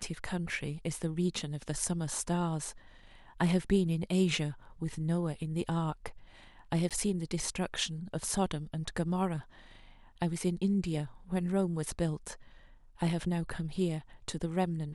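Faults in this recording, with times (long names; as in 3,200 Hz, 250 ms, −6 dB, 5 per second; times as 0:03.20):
0:06.89–0:06.91: drop-out 17 ms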